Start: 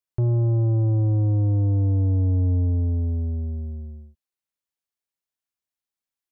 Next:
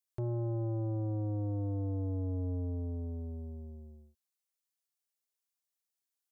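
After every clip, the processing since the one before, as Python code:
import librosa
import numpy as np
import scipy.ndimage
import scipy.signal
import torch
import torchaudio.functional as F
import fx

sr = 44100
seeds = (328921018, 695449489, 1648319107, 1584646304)

y = fx.bass_treble(x, sr, bass_db=-10, treble_db=8)
y = y * librosa.db_to_amplitude(-5.5)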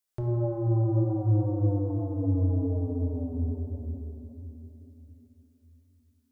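y = fx.room_shoebox(x, sr, seeds[0], volume_m3=150.0, walls='hard', distance_m=0.47)
y = y * librosa.db_to_amplitude(4.0)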